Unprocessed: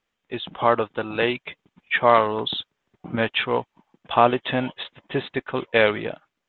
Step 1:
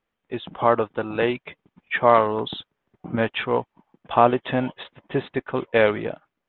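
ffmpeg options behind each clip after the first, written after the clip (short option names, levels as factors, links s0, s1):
-af "lowpass=f=1500:p=1,volume=1.19"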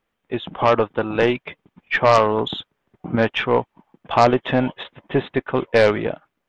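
-af "aeval=exprs='0.841*(cos(1*acos(clip(val(0)/0.841,-1,1)))-cos(1*PI/2))+0.106*(cos(4*acos(clip(val(0)/0.841,-1,1)))-cos(4*PI/2))+0.119*(cos(5*acos(clip(val(0)/0.841,-1,1)))-cos(5*PI/2))+0.106*(cos(6*acos(clip(val(0)/0.841,-1,1)))-cos(6*PI/2))':c=same"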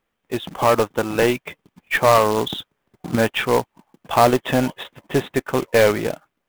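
-af "acrusher=bits=3:mode=log:mix=0:aa=0.000001"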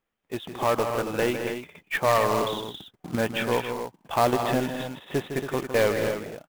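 -af "aecho=1:1:157.4|215.7|277:0.355|0.282|0.355,volume=0.422"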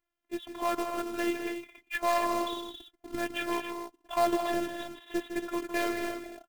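-af "afftfilt=real='hypot(re,im)*cos(PI*b)':imag='0':win_size=512:overlap=0.75,volume=0.794"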